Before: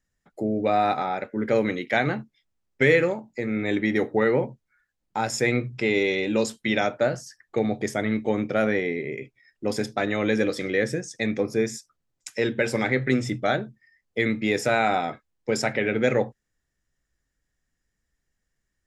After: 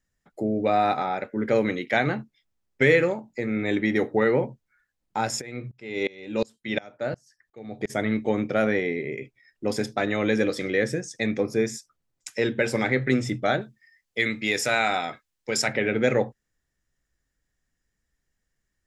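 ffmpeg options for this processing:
-filter_complex "[0:a]asplit=3[a][b][c];[a]afade=t=out:st=5.4:d=0.02[d];[b]aeval=exprs='val(0)*pow(10,-26*if(lt(mod(-2.8*n/s,1),2*abs(-2.8)/1000),1-mod(-2.8*n/s,1)/(2*abs(-2.8)/1000),(mod(-2.8*n/s,1)-2*abs(-2.8)/1000)/(1-2*abs(-2.8)/1000))/20)':c=same,afade=t=in:st=5.4:d=0.02,afade=t=out:st=7.89:d=0.02[e];[c]afade=t=in:st=7.89:d=0.02[f];[d][e][f]amix=inputs=3:normalize=0,asettb=1/sr,asplit=3[g][h][i];[g]atrim=end=13.614[j];[h]atrim=start=13.61:end=15.68,asetpts=PTS-STARTPTS,afade=t=in:d=0.004:c=qsin,afade=t=out:st=2.066:d=0.004:c=qsin,tiltshelf=f=1.3k:g=-6[k];[i]atrim=start=15.676[l];[j][k]acrossfade=d=0.004:c1=hsin:c2=qsin[m];[m][l]acrossfade=d=0.004:c1=qsin:c2=hsin"

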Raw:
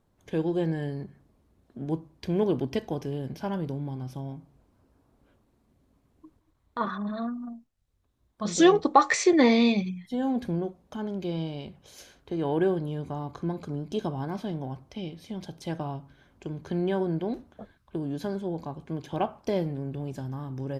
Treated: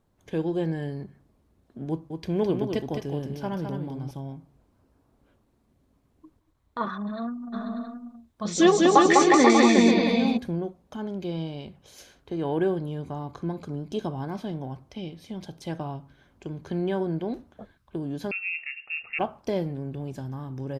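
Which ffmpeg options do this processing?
-filter_complex "[0:a]asettb=1/sr,asplit=3[a][b][c];[a]atrim=end=1.894[d];[b]atrim=start=1.89:end=4.11,asetpts=PTS-STARTPTS,afade=t=in:d=0.004:c=qsin,afade=t=out:st=2.216:d=0.004:c=qsin,aecho=1:1:211:0.501,atrim=end_sample=97902[e];[c]atrim=start=4.106[f];[d][e]acrossfade=d=0.004:c1=hsin:c2=qsin[g];[g][f]acrossfade=d=0.004:c1=qsin:c2=hsin,asplit=3[h][i][j];[h]afade=t=out:st=7.52:d=0.02[k];[i]aecho=1:1:200|360|488|590.4|672.3:0.794|0.631|0.501|0.398|0.316,afade=t=in:st=7.52:d=0.02,afade=t=out:st=10.36:d=0.02[l];[j]afade=t=in:st=10.36:d=0.02[m];[k][l][m]amix=inputs=3:normalize=0,asettb=1/sr,asplit=3[n][o][p];[n]atrim=end=18.314[q];[o]atrim=start=18.31:end=19.19,asetpts=PTS-STARTPTS,afade=t=in:d=0.004:c=qsin,afade=t=out:st=0.876:d=0.004:c=qsin,lowpass=f=2.5k:t=q:w=0.5098,lowpass=f=2.5k:t=q:w=0.6013,lowpass=f=2.5k:t=q:w=0.9,lowpass=f=2.5k:t=q:w=2.563,afreqshift=-2900[r];[p]atrim=start=19.186[s];[q][r]acrossfade=d=0.004:c1=hsin:c2=qsin[t];[t][s]acrossfade=d=0.004:c1=qsin:c2=hsin"

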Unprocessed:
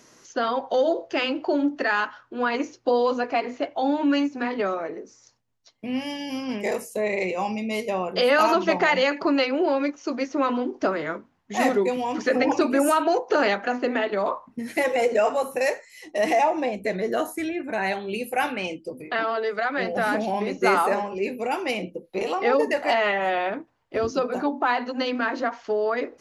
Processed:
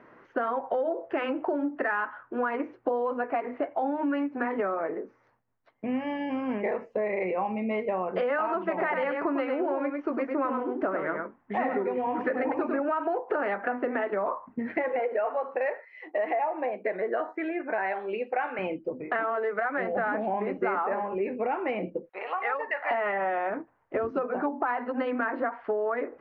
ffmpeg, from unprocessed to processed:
-filter_complex "[0:a]asettb=1/sr,asplit=3[a][b][c];[a]atrim=end=8.604[d];[b]atrim=start=8.6:end=12.8,asetpts=PTS-STARTPTS,afade=t=in:d=0.004:c=qsin,afade=t=out:st=4.196:d=0.004:c=qsin,aecho=1:1:100:0.501,atrim=end_sample=185220[e];[c]atrim=start=12.796[f];[d][e]acrossfade=d=0.004:c1=hsin:c2=qsin[g];[g][f]acrossfade=d=0.004:c1=qsin:c2=hsin,asettb=1/sr,asplit=3[h][i][j];[h]atrim=end=14.994[k];[i]atrim=start=14.99:end=18.59,asetpts=PTS-STARTPTS,afade=t=in:d=0.004:c=qsin,afade=t=out:st=3.596:d=0.004:c=qsin,highpass=380[l];[j]atrim=start=18.586[m];[k][l]acrossfade=d=0.004:c1=hsin:c2=qsin[n];[n][m]acrossfade=d=0.004:c1=qsin:c2=hsin,asettb=1/sr,asplit=3[o][p][q];[o]atrim=end=22.094[r];[p]atrim=start=22.09:end=22.91,asetpts=PTS-STARTPTS,afade=t=in:d=0.004:c=qsin,afade=t=out:st=0.816:d=0.004:c=qsin,highpass=1.1k[s];[q]atrim=start=22.906[t];[r][s]acrossfade=d=0.004:c1=hsin:c2=qsin[u];[u][t]acrossfade=d=0.004:c1=qsin:c2=hsin,lowpass=f=1.9k:w=0.5412,lowpass=f=1.9k:w=1.3066,lowshelf=f=260:g=-7.5,acompressor=threshold=-30dB:ratio=6,volume=4.5dB"

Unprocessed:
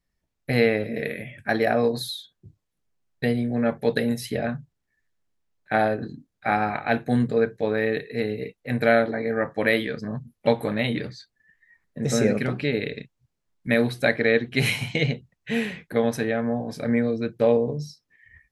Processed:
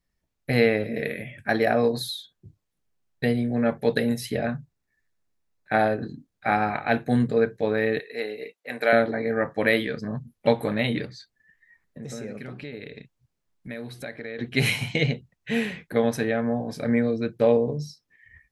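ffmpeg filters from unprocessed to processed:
-filter_complex "[0:a]asettb=1/sr,asplit=3[a][b][c];[a]atrim=end=4.444[d];[b]atrim=start=4.44:end=5.81,asetpts=PTS-STARTPTS,afade=t=in:d=0.004:c=qsin,afade=t=out:st=1.366:d=0.004:c=qsin,bandreject=f=3.1k:w=12[e];[c]atrim=start=5.806[f];[d][e]acrossfade=d=0.004:c1=hsin:c2=qsin[g];[g][f]acrossfade=d=0.004:c1=qsin:c2=hsin,asettb=1/sr,asplit=3[h][i][j];[h]atrim=end=7.994[k];[i]atrim=start=7.99:end=8.93,asetpts=PTS-STARTPTS,afade=t=in:d=0.004:c=qsin,afade=t=out:st=0.936:d=0.004:c=qsin,highpass=470[l];[j]atrim=start=8.926[m];[k][l]acrossfade=d=0.004:c1=hsin:c2=qsin[n];[n][m]acrossfade=d=0.004:c1=qsin:c2=hsin,asettb=1/sr,asplit=3[o][p][q];[o]atrim=end=11.054[r];[p]atrim=start=11.05:end=14.39,asetpts=PTS-STARTPTS,afade=t=in:d=0.004:c=qsin,afade=t=out:st=3.336:d=0.004:c=qsin,acompressor=threshold=-39dB:ratio=2.5:attack=3.2:release=140:knee=1:detection=peak[s];[q]atrim=start=14.386[t];[r][s]acrossfade=d=0.004:c1=hsin:c2=qsin[u];[u][t]acrossfade=d=0.004:c1=qsin:c2=hsin"

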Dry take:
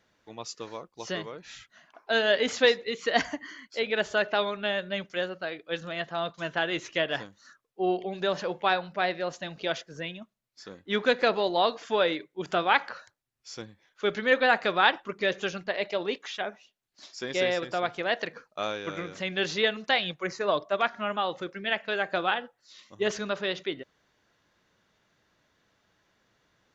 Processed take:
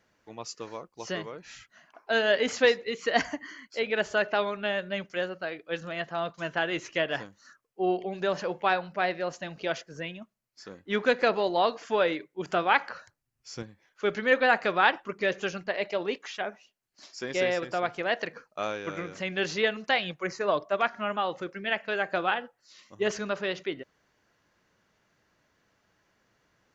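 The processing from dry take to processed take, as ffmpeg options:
-filter_complex "[0:a]asettb=1/sr,asplit=3[a][b][c];[a]atrim=end=12.944[d];[b]atrim=start=12.94:end=13.63,asetpts=PTS-STARTPTS,afade=t=in:d=0.004:c=qsin,afade=t=out:st=0.686:d=0.004:c=qsin,bass=f=250:g=8,treble=f=4k:g=0[e];[c]atrim=start=13.626[f];[d][e]acrossfade=d=0.004:c1=hsin:c2=qsin[g];[g][f]acrossfade=d=0.004:c1=qsin:c2=hsin,equalizer=f=3.6k:t=o:w=0.27:g=-7.5"

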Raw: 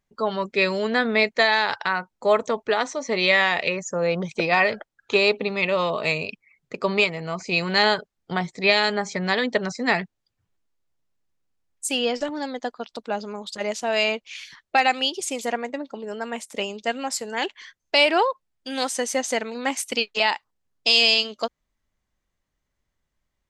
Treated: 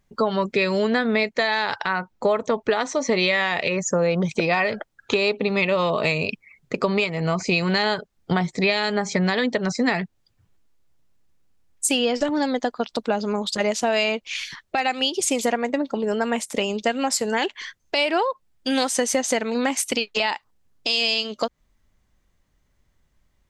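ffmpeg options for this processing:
-filter_complex "[0:a]asettb=1/sr,asplit=3[a][b][c];[a]atrim=end=1.864[d];[b]atrim=start=1.86:end=2.64,asetpts=PTS-STARTPTS,afade=t=in:d=0.004:c=qsin,afade=t=out:st=0.776:d=0.004:c=qsin,equalizer=f=9.7k:t=o:w=1.3:g=-7[e];[c]atrim=start=2.636[f];[d][e]acrossfade=d=0.004:c1=hsin:c2=qsin[g];[g][f]acrossfade=d=0.004:c1=qsin:c2=hsin,lowshelf=f=280:g=5.5,acompressor=threshold=-26dB:ratio=6,alimiter=level_in=16.5dB:limit=-1dB:release=50:level=0:latency=1,volume=-8.5dB"

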